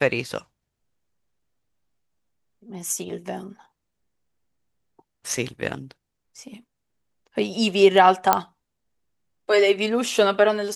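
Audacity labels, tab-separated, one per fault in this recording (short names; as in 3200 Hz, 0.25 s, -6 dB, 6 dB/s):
8.330000	8.330000	pop -2 dBFS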